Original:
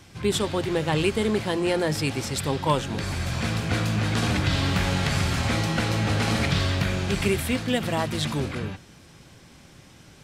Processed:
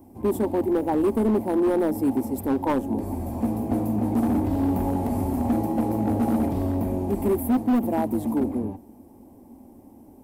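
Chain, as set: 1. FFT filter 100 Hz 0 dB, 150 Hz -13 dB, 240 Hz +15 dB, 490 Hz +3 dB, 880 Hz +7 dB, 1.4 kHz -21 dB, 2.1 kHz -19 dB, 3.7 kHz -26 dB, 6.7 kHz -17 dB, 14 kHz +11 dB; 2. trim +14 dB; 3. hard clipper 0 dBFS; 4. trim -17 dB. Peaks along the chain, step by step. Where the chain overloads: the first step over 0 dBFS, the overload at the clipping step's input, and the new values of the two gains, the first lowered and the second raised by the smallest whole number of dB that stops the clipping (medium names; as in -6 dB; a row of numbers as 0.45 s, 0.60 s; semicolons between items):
-4.0 dBFS, +10.0 dBFS, 0.0 dBFS, -17.0 dBFS; step 2, 10.0 dB; step 2 +4 dB, step 4 -7 dB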